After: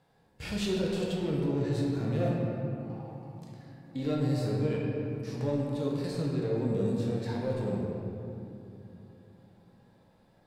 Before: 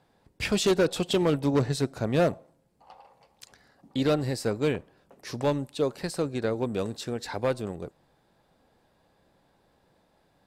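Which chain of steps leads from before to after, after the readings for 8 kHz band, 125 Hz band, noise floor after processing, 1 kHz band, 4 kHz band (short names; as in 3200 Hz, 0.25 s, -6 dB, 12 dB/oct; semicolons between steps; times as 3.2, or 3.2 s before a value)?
-11.0 dB, +1.5 dB, -64 dBFS, -7.5 dB, -8.5 dB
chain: harmonic-percussive split percussive -17 dB; limiter -27.5 dBFS, peak gain reduction 11.5 dB; shoebox room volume 130 m³, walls hard, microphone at 0.58 m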